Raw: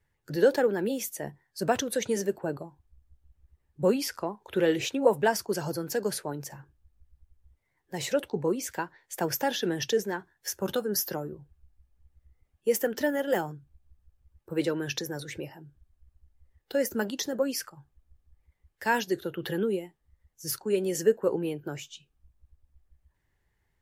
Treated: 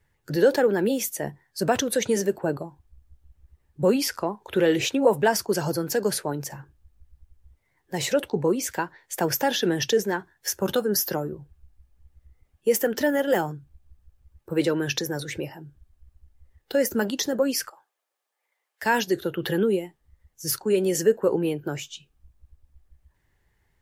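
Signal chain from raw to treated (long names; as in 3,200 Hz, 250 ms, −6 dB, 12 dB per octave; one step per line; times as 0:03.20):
0:17.70–0:18.83: high-pass filter 530 Hz 24 dB per octave
in parallel at 0 dB: brickwall limiter −20.5 dBFS, peak gain reduction 11.5 dB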